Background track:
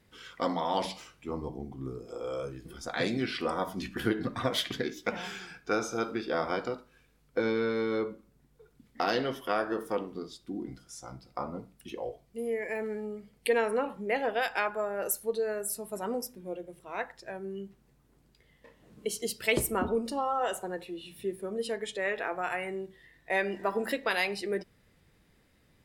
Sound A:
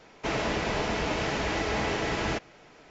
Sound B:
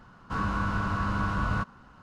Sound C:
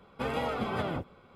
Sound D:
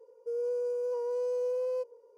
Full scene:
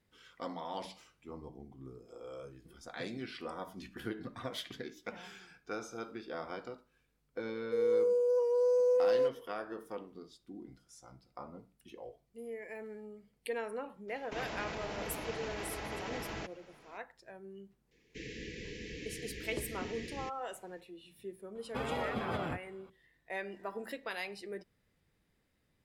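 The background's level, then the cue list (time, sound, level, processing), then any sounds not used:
background track -11 dB
7.45 add D -0.5 dB + comb 5.9 ms, depth 69%
14.08 add A -6.5 dB + limiter -26 dBFS
17.91 add A -13.5 dB + Chebyshev band-stop 500–1700 Hz, order 5
21.55 add C -4.5 dB
not used: B

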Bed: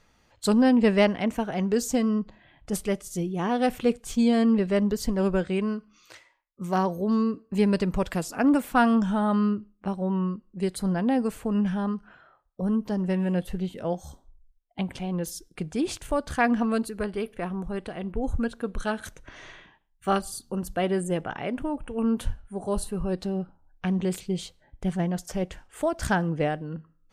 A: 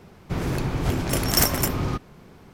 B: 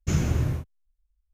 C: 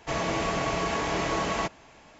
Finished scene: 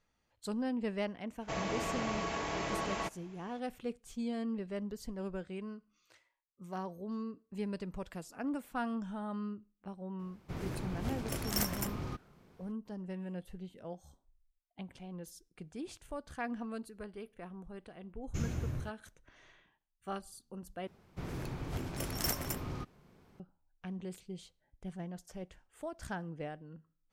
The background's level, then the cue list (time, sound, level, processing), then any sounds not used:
bed -16 dB
1.41 add C -8.5 dB
10.19 add A -14 dB
18.27 add B -12.5 dB
20.87 replace with A -14.5 dB

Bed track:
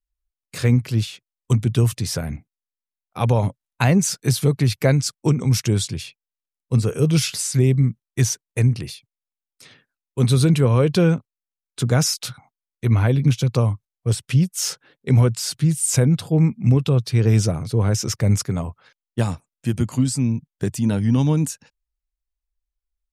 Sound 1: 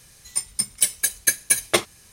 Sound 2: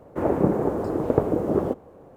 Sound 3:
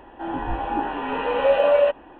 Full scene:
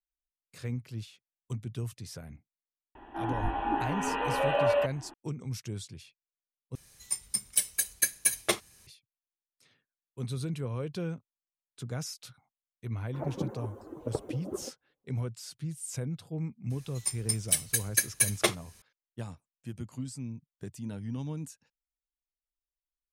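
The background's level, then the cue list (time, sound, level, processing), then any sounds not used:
bed track -18.5 dB
2.95 add 3 -4.5 dB + bell 520 Hz -13.5 dB 0.2 oct
6.75 replace with 1 -8.5 dB + high shelf 9800 Hz +3.5 dB
12.97 add 2 -10.5 dB + per-bin expansion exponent 2
16.7 add 1 -6.5 dB

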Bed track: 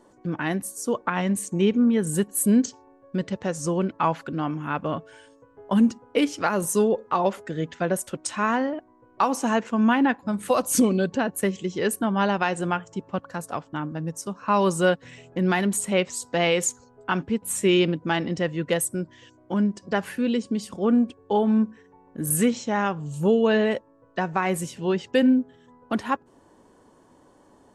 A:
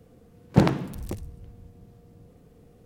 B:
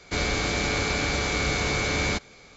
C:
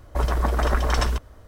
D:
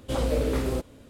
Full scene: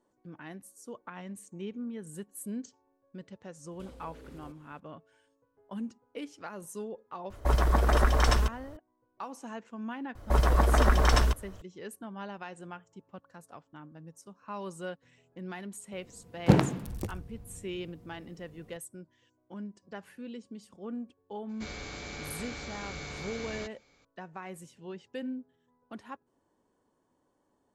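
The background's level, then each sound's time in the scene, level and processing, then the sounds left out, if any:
bed track -18.5 dB
3.71 add D -14 dB + compressor, threshold -33 dBFS
7.3 add C -2 dB
10.15 add C -1 dB
15.92 add A -2.5 dB
21.49 add B -15.5 dB

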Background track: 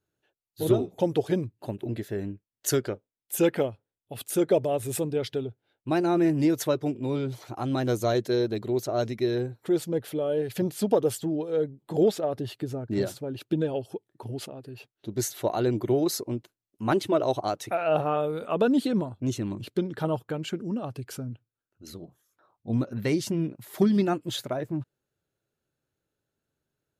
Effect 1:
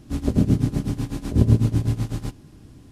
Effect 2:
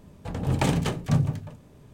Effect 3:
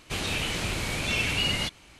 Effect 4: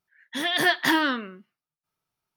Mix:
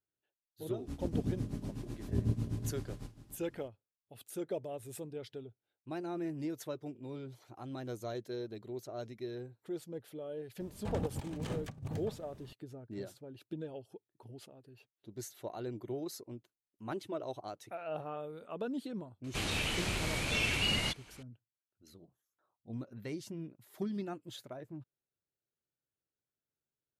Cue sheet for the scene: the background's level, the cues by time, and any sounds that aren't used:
background track -15.5 dB
0.77 add 1 -16 dB + echo 0.288 s -12.5 dB
10.6 add 2 -9.5 dB + negative-ratio compressor -29 dBFS, ratio -0.5
19.24 add 3 -5 dB
not used: 4

